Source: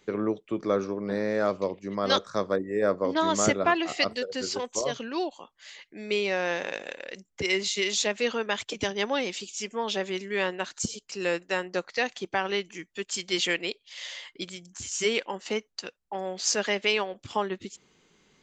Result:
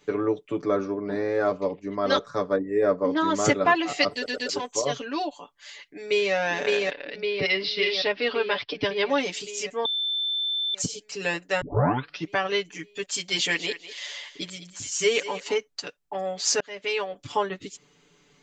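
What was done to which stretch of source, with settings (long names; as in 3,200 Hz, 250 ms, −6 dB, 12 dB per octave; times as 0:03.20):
0:00.64–0:03.45: high-shelf EQ 3,000 Hz −9 dB
0:04.13: stutter in place 0.12 s, 3 plays
0:05.55–0:06.33: delay throw 560 ms, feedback 70%, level −1.5 dB
0:06.90–0:09.10: Butterworth low-pass 5,300 Hz 96 dB per octave
0:09.85–0:10.74: beep over 3,540 Hz −19.5 dBFS
0:11.61: tape start 0.71 s
0:13.17–0:15.55: feedback echo with a high-pass in the loop 200 ms, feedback 20%, high-pass 430 Hz, level −13 dB
0:16.60–0:17.22: fade in
whole clip: comb filter 6.9 ms, depth 93%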